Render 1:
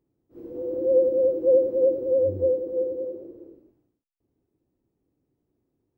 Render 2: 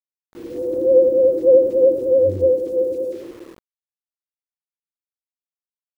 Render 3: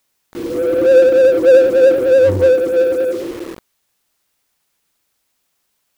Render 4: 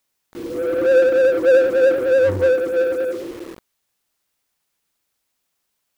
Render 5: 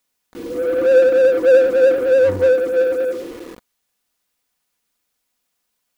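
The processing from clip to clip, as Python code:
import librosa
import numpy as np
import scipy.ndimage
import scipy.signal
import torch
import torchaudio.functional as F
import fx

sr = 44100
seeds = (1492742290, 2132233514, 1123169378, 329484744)

y1 = np.where(np.abs(x) >= 10.0 ** (-48.0 / 20.0), x, 0.0)
y1 = y1 * 10.0 ** (6.5 / 20.0)
y2 = fx.power_curve(y1, sr, exponent=0.7)
y2 = y2 * 10.0 ** (2.0 / 20.0)
y3 = fx.dynamic_eq(y2, sr, hz=1500.0, q=0.97, threshold_db=-28.0, ratio=4.0, max_db=7)
y3 = y3 * 10.0 ** (-6.0 / 20.0)
y4 = y3 + 0.36 * np.pad(y3, (int(4.1 * sr / 1000.0), 0))[:len(y3)]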